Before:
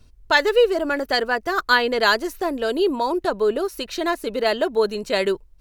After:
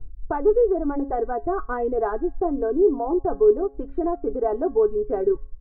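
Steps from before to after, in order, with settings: tilt EQ -3 dB/octave; feedback comb 140 Hz, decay 0.44 s, harmonics all, mix 70%; reverb removal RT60 0.53 s; comb 2.6 ms, depth 71%; in parallel at -3 dB: compression, threshold -27 dBFS, peak gain reduction 14 dB; on the sum: low-pass 1.1 kHz 24 dB/octave; de-hum 273 Hz, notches 39

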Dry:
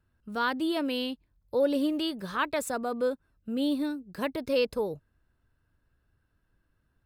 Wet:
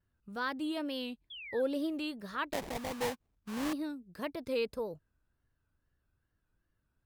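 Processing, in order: 2.53–3.73 s: sample-rate reducer 1.4 kHz, jitter 20%; wow and flutter 110 cents; 1.30–1.62 s: painted sound fall 1.5–3.5 kHz -39 dBFS; trim -7 dB

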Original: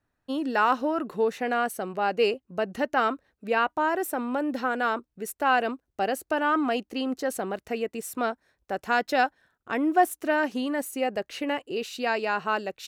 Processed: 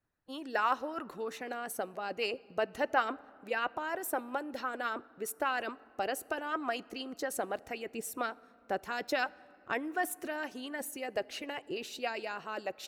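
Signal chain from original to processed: harmonic-percussive split harmonic -12 dB; on a send: bass shelf 180 Hz +8.5 dB + reverberation RT60 2.8 s, pre-delay 6 ms, DRR 21.5 dB; on the sum: trim -2.5 dB

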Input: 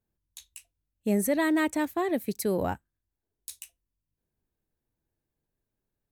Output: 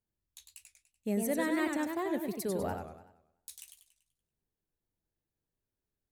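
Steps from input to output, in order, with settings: modulated delay 96 ms, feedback 46%, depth 199 cents, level -5 dB; trim -7 dB

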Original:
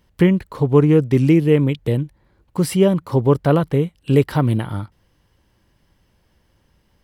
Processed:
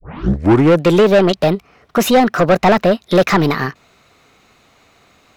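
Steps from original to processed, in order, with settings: tape start-up on the opening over 1.14 s; overdrive pedal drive 24 dB, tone 2.5 kHz, clips at -2.5 dBFS; wide varispeed 1.31×

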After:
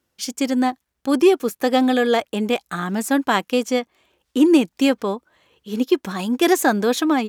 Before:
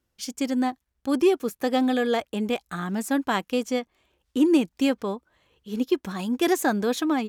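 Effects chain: high-pass 180 Hz 6 dB/octave; trim +6.5 dB

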